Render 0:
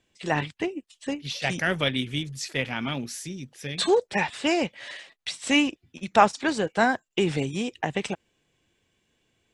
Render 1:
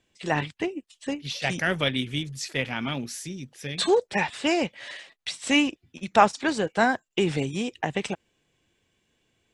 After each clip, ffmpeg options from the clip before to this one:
-af anull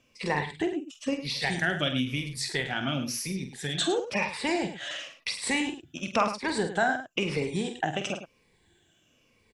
-af "afftfilt=real='re*pow(10,11/40*sin(2*PI*(0.9*log(max(b,1)*sr/1024/100)/log(2)-(-0.98)*(pts-256)/sr)))':imag='im*pow(10,11/40*sin(2*PI*(0.9*log(max(b,1)*sr/1024/100)/log(2)-(-0.98)*(pts-256)/sr)))':win_size=1024:overlap=0.75,acompressor=threshold=-34dB:ratio=2,aecho=1:1:47|105:0.376|0.266,volume=3dB"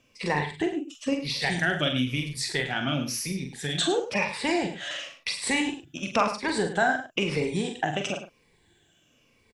-filter_complex "[0:a]asplit=2[a][b];[b]adelay=40,volume=-9.5dB[c];[a][c]amix=inputs=2:normalize=0,volume=1.5dB"

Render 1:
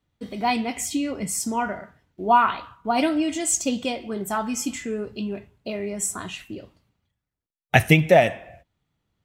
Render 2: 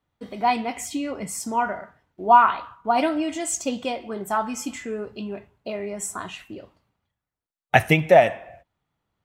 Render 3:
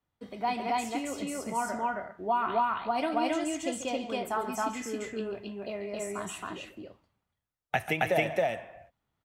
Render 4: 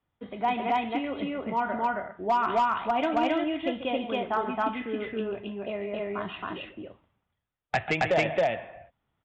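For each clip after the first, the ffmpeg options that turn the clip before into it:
-af "equalizer=f=940:w=0.59:g=8.5,volume=-5dB"
-filter_complex "[0:a]acrossover=split=310|3200[a][b][c];[a]acompressor=threshold=-34dB:ratio=4[d];[b]acompressor=threshold=-20dB:ratio=4[e];[c]acompressor=threshold=-36dB:ratio=4[f];[d][e][f]amix=inputs=3:normalize=0,aecho=1:1:139.9|271.1:0.251|1,volume=-6.5dB"
-af "aresample=8000,aresample=44100,aresample=16000,asoftclip=type=hard:threshold=-21.5dB,aresample=44100,volume=3.5dB"

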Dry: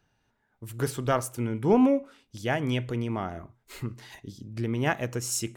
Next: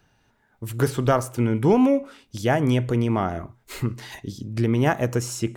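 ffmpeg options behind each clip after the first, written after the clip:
-filter_complex "[0:a]acrossover=split=1700|5000[a][b][c];[a]acompressor=threshold=-23dB:ratio=4[d];[b]acompressor=threshold=-48dB:ratio=4[e];[c]acompressor=threshold=-46dB:ratio=4[f];[d][e][f]amix=inputs=3:normalize=0,volume=8.5dB"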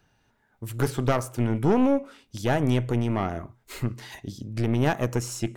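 -af "aeval=exprs='(tanh(5.01*val(0)+0.6)-tanh(0.6))/5.01':c=same"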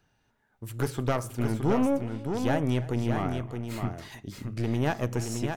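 -af "aecho=1:1:314|619:0.112|0.501,volume=-4dB"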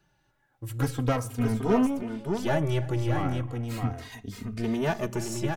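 -filter_complex "[0:a]asplit=2[a][b];[b]adelay=3,afreqshift=-0.37[c];[a][c]amix=inputs=2:normalize=1,volume=4dB"

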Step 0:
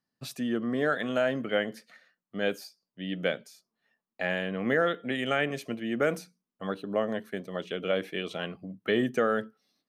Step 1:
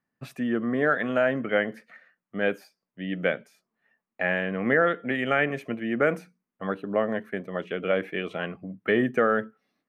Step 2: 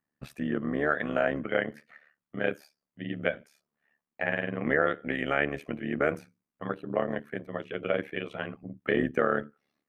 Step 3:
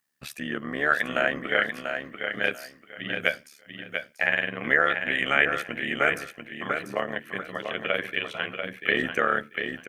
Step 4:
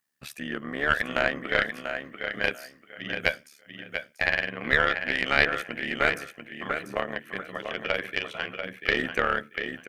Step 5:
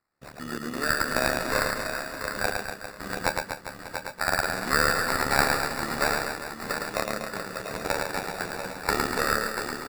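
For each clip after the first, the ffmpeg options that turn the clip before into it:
-af "highshelf=f=3k:t=q:w=1.5:g=-11,volume=3dB"
-af "tremolo=f=73:d=0.889"
-filter_complex "[0:a]tiltshelf=f=1.3k:g=-9.5,asplit=2[a][b];[b]aecho=0:1:690|1380|2070:0.473|0.104|0.0229[c];[a][c]amix=inputs=2:normalize=0,volume=5dB"
-af "aeval=exprs='0.562*(cos(1*acos(clip(val(0)/0.562,-1,1)))-cos(1*PI/2))+0.2*(cos(2*acos(clip(val(0)/0.562,-1,1)))-cos(2*PI/2))+0.00891*(cos(7*acos(clip(val(0)/0.562,-1,1)))-cos(7*PI/2))':c=same,volume=-1dB"
-af "acrusher=samples=14:mix=1:aa=0.000001,aecho=1:1:110|242|400.4|590.5|818.6:0.631|0.398|0.251|0.158|0.1,volume=-1.5dB"

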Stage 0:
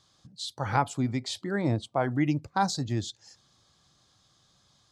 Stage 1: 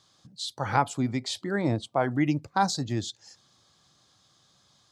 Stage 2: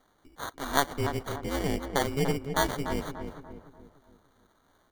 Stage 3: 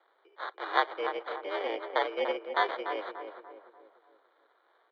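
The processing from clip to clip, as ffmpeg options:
-af "highpass=f=120:p=1,volume=2dB"
-filter_complex "[0:a]aeval=exprs='val(0)*sin(2*PI*140*n/s)':c=same,acrusher=samples=17:mix=1:aa=0.000001,asplit=2[a][b];[b]adelay=292,lowpass=f=1.5k:p=1,volume=-7dB,asplit=2[c][d];[d]adelay=292,lowpass=f=1.5k:p=1,volume=0.46,asplit=2[e][f];[f]adelay=292,lowpass=f=1.5k:p=1,volume=0.46,asplit=2[g][h];[h]adelay=292,lowpass=f=1.5k:p=1,volume=0.46,asplit=2[i][j];[j]adelay=292,lowpass=f=1.5k:p=1,volume=0.46[k];[a][c][e][g][i][k]amix=inputs=6:normalize=0"
-af "highpass=f=330:t=q:w=0.5412,highpass=f=330:t=q:w=1.307,lowpass=f=3.6k:t=q:w=0.5176,lowpass=f=3.6k:t=q:w=0.7071,lowpass=f=3.6k:t=q:w=1.932,afreqshift=75"

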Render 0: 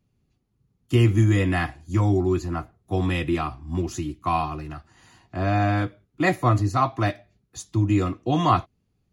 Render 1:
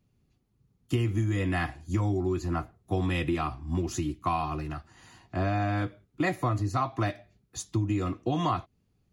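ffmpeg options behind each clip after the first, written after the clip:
-af "acompressor=threshold=-24dB:ratio=6"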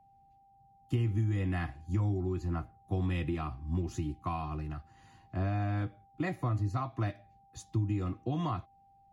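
-af "bass=f=250:g=7,treble=f=4k:g=-4,aeval=exprs='val(0)+0.00251*sin(2*PI*790*n/s)':c=same,volume=-8.5dB"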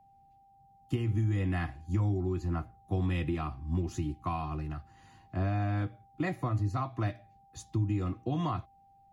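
-af "bandreject=f=60:t=h:w=6,bandreject=f=120:t=h:w=6,volume=1.5dB"

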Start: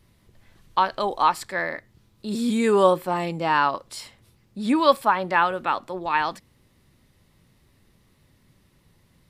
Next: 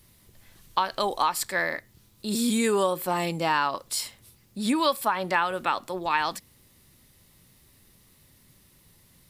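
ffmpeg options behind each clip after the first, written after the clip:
-af "highshelf=f=8.7k:g=-4.5,acompressor=threshold=-20dB:ratio=6,aemphasis=mode=production:type=75fm"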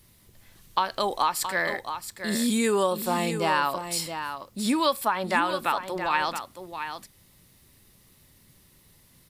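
-af "aecho=1:1:672:0.355"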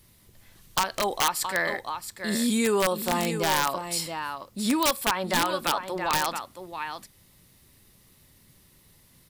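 -af "aeval=exprs='(mod(5.31*val(0)+1,2)-1)/5.31':c=same"

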